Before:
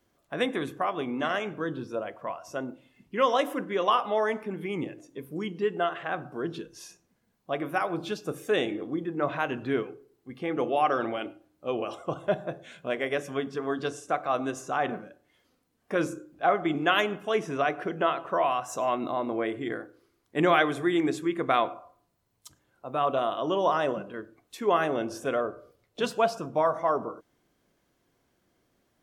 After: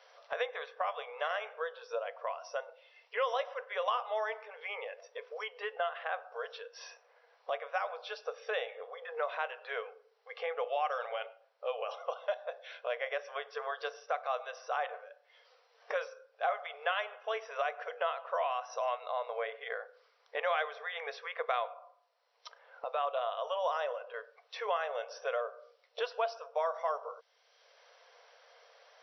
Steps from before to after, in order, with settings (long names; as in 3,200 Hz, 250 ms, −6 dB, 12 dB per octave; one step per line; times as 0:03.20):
linear-phase brick-wall band-pass 440–5,900 Hz
multiband upward and downward compressor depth 70%
level −6 dB